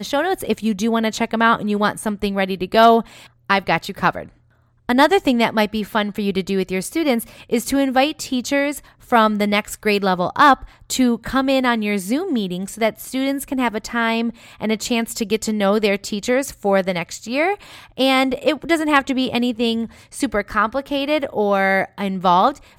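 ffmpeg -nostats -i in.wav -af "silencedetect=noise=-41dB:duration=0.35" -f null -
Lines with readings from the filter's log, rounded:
silence_start: 4.29
silence_end: 4.89 | silence_duration: 0.60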